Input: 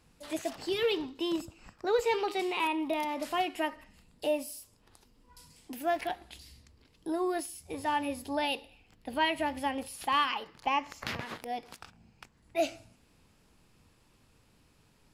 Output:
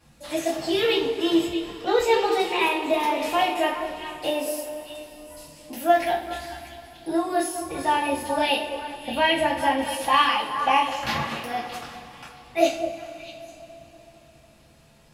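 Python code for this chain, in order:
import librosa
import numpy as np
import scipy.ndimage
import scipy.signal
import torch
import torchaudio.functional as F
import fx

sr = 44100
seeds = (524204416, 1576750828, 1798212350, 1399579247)

y = fx.echo_stepped(x, sr, ms=209, hz=480.0, octaves=1.4, feedback_pct=70, wet_db=-5.0)
y = fx.rev_double_slope(y, sr, seeds[0], early_s=0.33, late_s=4.2, knee_db=-21, drr_db=-8.5)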